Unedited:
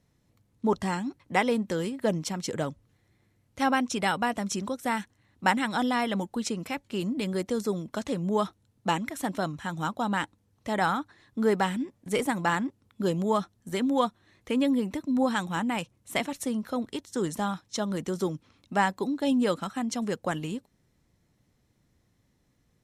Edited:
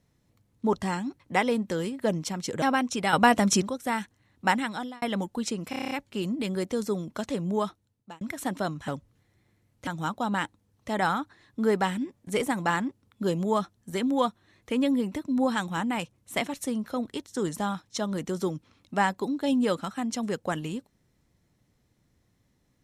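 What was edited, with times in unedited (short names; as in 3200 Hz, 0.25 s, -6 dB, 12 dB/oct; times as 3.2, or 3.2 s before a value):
2.62–3.61 move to 9.66
4.12–4.61 gain +8.5 dB
5.54–6.01 fade out
6.69 stutter 0.03 s, 8 plays
8.27–8.99 fade out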